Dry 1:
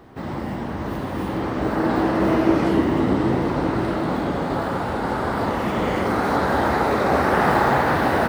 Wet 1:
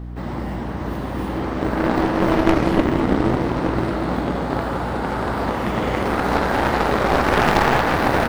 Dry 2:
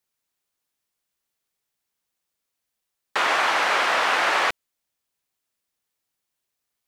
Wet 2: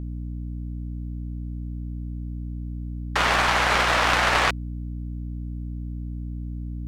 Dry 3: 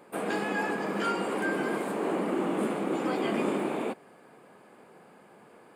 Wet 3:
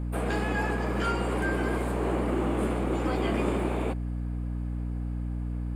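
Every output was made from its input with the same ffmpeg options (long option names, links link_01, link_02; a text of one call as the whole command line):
ffmpeg -i in.wav -af "aeval=exprs='0.562*(cos(1*acos(clip(val(0)/0.562,-1,1)))-cos(1*PI/2))+0.251*(cos(6*acos(clip(val(0)/0.562,-1,1)))-cos(6*PI/2))+0.158*(cos(8*acos(clip(val(0)/0.562,-1,1)))-cos(8*PI/2))':channel_layout=same,aeval=exprs='val(0)+0.0316*(sin(2*PI*60*n/s)+sin(2*PI*2*60*n/s)/2+sin(2*PI*3*60*n/s)/3+sin(2*PI*4*60*n/s)/4+sin(2*PI*5*60*n/s)/5)':channel_layout=same" out.wav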